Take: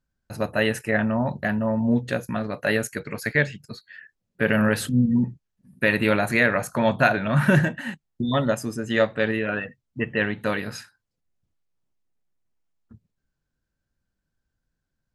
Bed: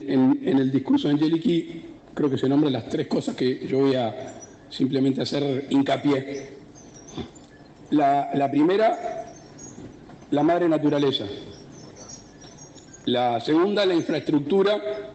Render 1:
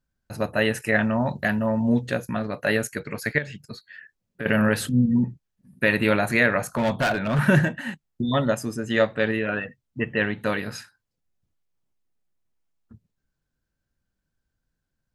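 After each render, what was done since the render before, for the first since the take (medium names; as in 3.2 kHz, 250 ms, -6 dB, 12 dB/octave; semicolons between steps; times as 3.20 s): 0.82–2.08 s: treble shelf 2.4 kHz +8 dB; 3.38–4.46 s: compression 3:1, threshold -29 dBFS; 6.69–7.39 s: hard clipper -18.5 dBFS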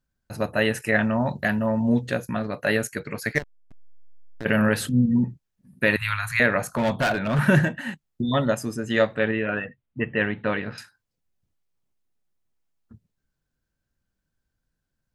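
3.35–4.45 s: hysteresis with a dead band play -21.5 dBFS; 5.96–6.40 s: Chebyshev band-stop 110–1100 Hz, order 3; 9.19–10.78 s: low-pass 3.3 kHz 24 dB/octave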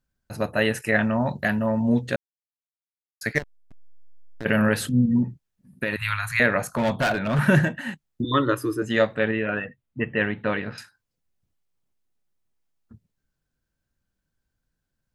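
2.16–3.21 s: mute; 5.22–6.05 s: compression, threshold -21 dBFS; 8.24–8.82 s: FFT filter 130 Hz 0 dB, 200 Hz -29 dB, 300 Hz +13 dB, 500 Hz +2 dB, 730 Hz -17 dB, 1.1 kHz +9 dB, 2.2 kHz -3 dB, 3.7 kHz +2 dB, 7 kHz -11 dB, 11 kHz +2 dB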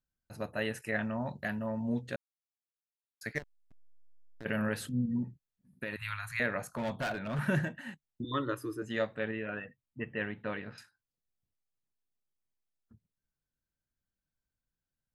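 trim -12 dB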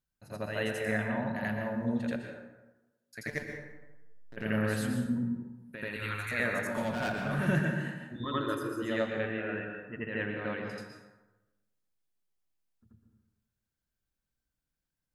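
on a send: reverse echo 84 ms -5.5 dB; on the sum: plate-style reverb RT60 1.1 s, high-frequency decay 0.5×, pre-delay 105 ms, DRR 4 dB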